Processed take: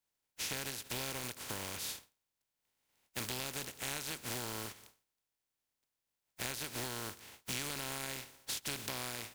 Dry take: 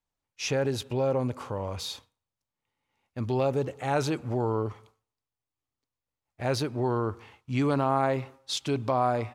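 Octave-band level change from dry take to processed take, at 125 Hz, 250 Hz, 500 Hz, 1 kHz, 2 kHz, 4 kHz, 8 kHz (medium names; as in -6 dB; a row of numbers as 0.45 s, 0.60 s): -17.5 dB, -17.5 dB, -20.0 dB, -16.5 dB, -4.0 dB, -3.0 dB, +2.5 dB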